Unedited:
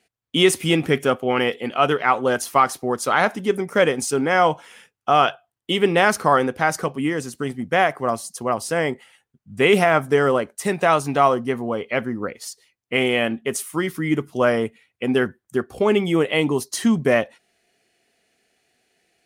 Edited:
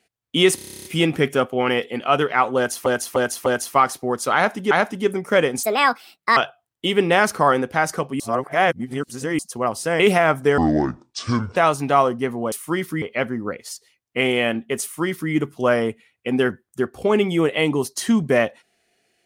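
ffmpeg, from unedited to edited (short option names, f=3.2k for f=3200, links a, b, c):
-filter_complex "[0:a]asplit=24[a][b][c][d][e][f][g][h][i][j][k][l][m][n][o][p][q][r][s][t][u][v][w][x];[a]atrim=end=0.582[y];[b]atrim=start=0.548:end=0.582[z];[c]atrim=start=0.548:end=0.582[aa];[d]atrim=start=0.548:end=0.582[ab];[e]atrim=start=0.548:end=0.582[ac];[f]atrim=start=0.548:end=0.582[ad];[g]atrim=start=0.548:end=0.582[ae];[h]atrim=start=0.548:end=0.582[af];[i]atrim=start=0.548:end=0.582[ag];[j]atrim=start=0.548:end=0.582[ah];[k]atrim=start=0.548:end=2.562[ai];[l]atrim=start=2.258:end=2.562[aj];[m]atrim=start=2.258:end=2.562[ak];[n]atrim=start=2.258:end=3.512[al];[o]atrim=start=3.148:end=4.074[am];[p]atrim=start=4.07:end=5.22,asetpts=PTS-STARTPTS,asetrate=68796,aresample=44100[an];[q]atrim=start=5.216:end=7.052[ao];[r]atrim=start=7.048:end=8.242,asetpts=PTS-STARTPTS,areverse[ap];[s]atrim=start=8.238:end=8.852[aq];[t]atrim=start=9.658:end=10.244[ar];[u]atrim=start=10.24:end=10.82,asetpts=PTS-STARTPTS,asetrate=26019,aresample=44100[as];[v]atrim=start=10.816:end=11.782[at];[w]atrim=start=13.578:end=14.082[au];[x]atrim=start=11.778[av];[y][z]acrossfade=d=0.004:c1=hsin:c2=hsin[aw];[aw][aa]acrossfade=d=0.004:c1=hsin:c2=hsin[ax];[ax][ab]acrossfade=d=0.004:c1=hsin:c2=hsin[ay];[ay][ac]acrossfade=d=0.004:c1=hsin:c2=hsin[az];[az][ad]acrossfade=d=0.004:c1=hsin:c2=hsin[ba];[ba][ae]acrossfade=d=0.004:c1=hsin:c2=hsin[bb];[bb][af]acrossfade=d=0.004:c1=hsin:c2=hsin[bc];[bc][ag]acrossfade=d=0.004:c1=hsin:c2=hsin[bd];[bd][ah]acrossfade=d=0.004:c1=hsin:c2=hsin[be];[be][ai]acrossfade=d=0.004:c1=hsin:c2=hsin[bf];[bf][aj]acrossfade=d=0.004:c1=hsin:c2=hsin[bg];[bg][ak]acrossfade=d=0.004:c1=hsin:c2=hsin[bh];[bh][al]acrossfade=d=0.004:c1=hsin:c2=hsin[bi];[bi][am]acrossfade=d=0.004:c1=hsin:c2=hsin[bj];[bj][an]acrossfade=d=0.004:c1=hsin:c2=hsin[bk];[bk][ao]acrossfade=d=0.004:c1=hsin:c2=hsin[bl];[bl][ap]acrossfade=d=0.004:c1=hsin:c2=hsin[bm];[bm][aq]acrossfade=d=0.004:c1=hsin:c2=hsin[bn];[bn][ar]acrossfade=d=0.004:c1=hsin:c2=hsin[bo];[bo][as]acrossfade=d=0.004:c1=hsin:c2=hsin[bp];[bp][at]acrossfade=d=0.004:c1=hsin:c2=hsin[bq];[bq][au]acrossfade=d=0.004:c1=hsin:c2=hsin[br];[br][av]acrossfade=d=0.004:c1=hsin:c2=hsin"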